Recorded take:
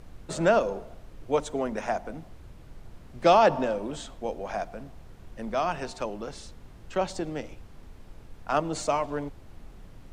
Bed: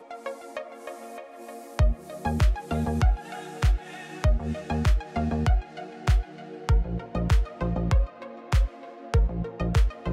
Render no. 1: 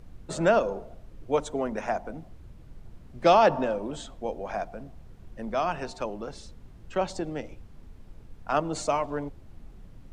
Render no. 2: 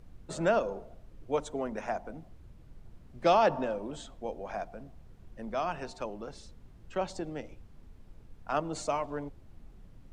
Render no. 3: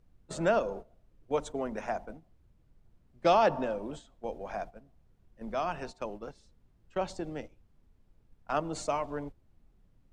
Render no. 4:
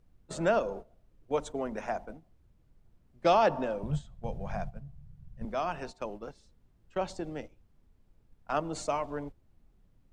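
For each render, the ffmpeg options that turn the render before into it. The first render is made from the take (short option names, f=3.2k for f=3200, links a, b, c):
-af "afftdn=nr=6:nf=-48"
-af "volume=-5dB"
-af "agate=range=-12dB:threshold=-41dB:ratio=16:detection=peak"
-filter_complex "[0:a]asettb=1/sr,asplit=3[a][b][c];[a]atrim=end=3.834[d];[b]atrim=start=3.83:end=5.45,asetpts=PTS-STARTPTS,afade=t=in:d=0.004:c=qsin,afade=t=out:st=1.616:d=0.004:c=qsin,lowshelf=f=210:t=q:w=3:g=12[e];[c]atrim=start=5.446[f];[d][e]acrossfade=d=0.004:c1=hsin:c2=qsin[g];[g][f]acrossfade=d=0.004:c1=qsin:c2=hsin"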